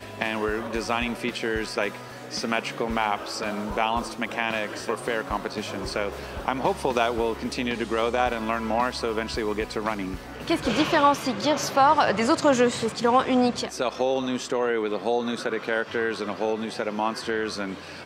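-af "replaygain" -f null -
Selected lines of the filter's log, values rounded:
track_gain = +5.0 dB
track_peak = 0.313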